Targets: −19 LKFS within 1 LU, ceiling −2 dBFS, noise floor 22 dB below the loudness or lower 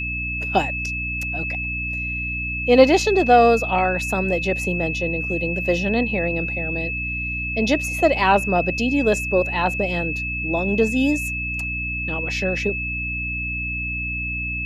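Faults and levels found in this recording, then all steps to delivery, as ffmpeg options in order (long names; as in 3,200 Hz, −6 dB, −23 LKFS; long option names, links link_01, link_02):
mains hum 60 Hz; hum harmonics up to 300 Hz; level of the hum −28 dBFS; interfering tone 2,600 Hz; level of the tone −25 dBFS; integrated loudness −21.0 LKFS; sample peak −1.5 dBFS; target loudness −19.0 LKFS
→ -af "bandreject=frequency=60:width_type=h:width=4,bandreject=frequency=120:width_type=h:width=4,bandreject=frequency=180:width_type=h:width=4,bandreject=frequency=240:width_type=h:width=4,bandreject=frequency=300:width_type=h:width=4"
-af "bandreject=frequency=2600:width=30"
-af "volume=2dB,alimiter=limit=-2dB:level=0:latency=1"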